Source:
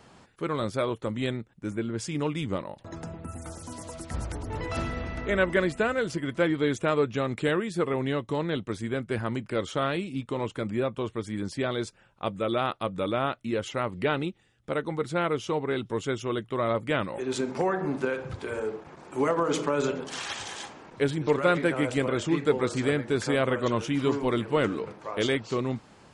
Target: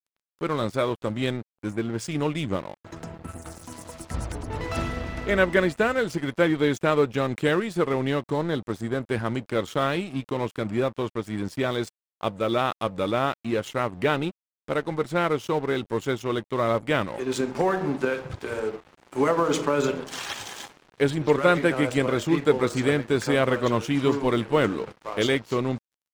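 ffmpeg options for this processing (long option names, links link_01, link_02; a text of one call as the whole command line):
ffmpeg -i in.wav -filter_complex "[0:a]asettb=1/sr,asplit=3[link_01][link_02][link_03];[link_01]atrim=end=8.264[link_04];[link_02]atrim=start=8.26:end=9.03,asetpts=PTS-STARTPTS,afade=type=in:duration=0.004:curve=qsin,afade=type=out:start_time=0.766:duration=0.004:curve=qsin,equalizer=frequency=2600:width_type=o:width=0.38:gain=-15[link_05];[link_03]atrim=start=9.026[link_06];[link_04][link_05]acrossfade=duration=0.004:curve1=hsin:curve2=qsin[link_07];[link_07][link_06]acrossfade=duration=0.004:curve1=qsin:curve2=hsin,aeval=exprs='sgn(val(0))*max(abs(val(0))-0.00631,0)':channel_layout=same,volume=4dB" out.wav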